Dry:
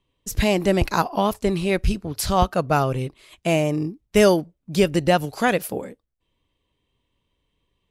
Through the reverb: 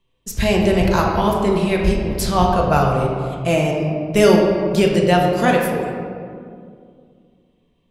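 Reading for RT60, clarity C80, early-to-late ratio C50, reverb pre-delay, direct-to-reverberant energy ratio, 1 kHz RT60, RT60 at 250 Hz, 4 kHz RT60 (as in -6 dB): 2.3 s, 3.5 dB, 2.0 dB, 4 ms, -1.5 dB, 2.0 s, 3.0 s, 1.1 s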